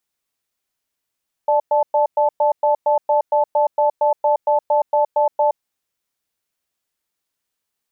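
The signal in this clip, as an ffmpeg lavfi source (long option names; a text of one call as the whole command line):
ffmpeg -f lavfi -i "aevalsrc='0.168*(sin(2*PI*593*t)+sin(2*PI*872*t))*clip(min(mod(t,0.23),0.12-mod(t,0.23))/0.005,0,1)':duration=4.07:sample_rate=44100" out.wav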